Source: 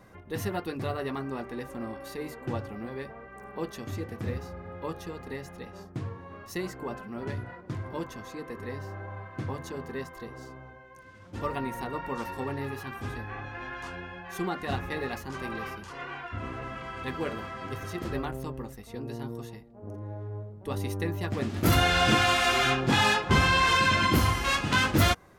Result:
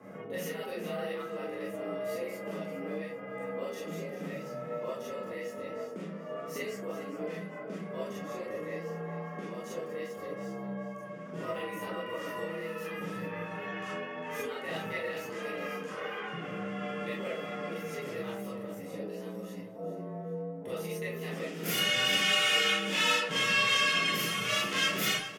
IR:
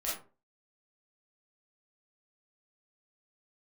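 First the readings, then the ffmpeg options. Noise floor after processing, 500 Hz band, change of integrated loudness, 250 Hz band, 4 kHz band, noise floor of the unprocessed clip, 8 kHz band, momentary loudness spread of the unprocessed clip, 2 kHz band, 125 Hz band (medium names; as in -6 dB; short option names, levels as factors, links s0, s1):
-43 dBFS, -0.5 dB, -3.5 dB, -6.0 dB, +1.0 dB, -49 dBFS, -0.5 dB, 18 LU, -2.5 dB, -12.0 dB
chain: -filter_complex "[0:a]equalizer=f=125:t=o:w=0.33:g=11,equalizer=f=400:t=o:w=0.33:g=12,equalizer=f=4000:t=o:w=0.33:g=-10,acrossover=split=2100[s0][s1];[s0]acompressor=threshold=0.01:ratio=6[s2];[s2][s1]amix=inputs=2:normalize=0,afreqshift=68,asplit=2[s3][s4];[s4]adynamicsmooth=sensitivity=3.5:basefreq=4200,volume=0.841[s5];[s3][s5]amix=inputs=2:normalize=0,aecho=1:1:403|806|1209|1612:0.237|0.083|0.029|0.0102[s6];[1:a]atrim=start_sample=2205[s7];[s6][s7]afir=irnorm=-1:irlink=0,volume=0.668"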